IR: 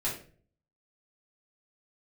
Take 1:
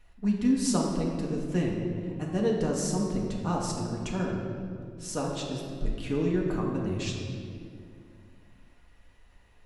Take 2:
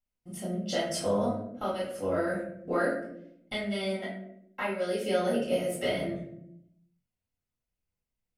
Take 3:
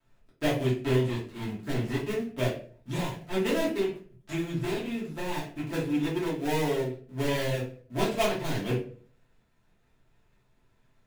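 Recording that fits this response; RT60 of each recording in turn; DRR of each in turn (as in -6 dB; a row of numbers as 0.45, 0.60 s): 3; 2.4, 0.75, 0.45 s; -2.5, -8.5, -8.5 dB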